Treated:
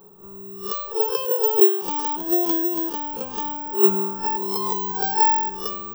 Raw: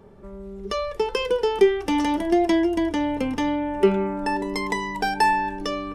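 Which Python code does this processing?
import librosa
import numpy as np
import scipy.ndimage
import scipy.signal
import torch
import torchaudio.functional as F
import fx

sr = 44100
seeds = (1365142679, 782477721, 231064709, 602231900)

y = fx.spec_swells(x, sr, rise_s=0.33)
y = fx.low_shelf(y, sr, hz=150.0, db=-10.0)
y = fx.fixed_phaser(y, sr, hz=410.0, stages=8)
y = (np.kron(y[::2], np.eye(2)[0]) * 2)[:len(y)]
y = fx.band_squash(y, sr, depth_pct=100, at=(4.24, 4.92))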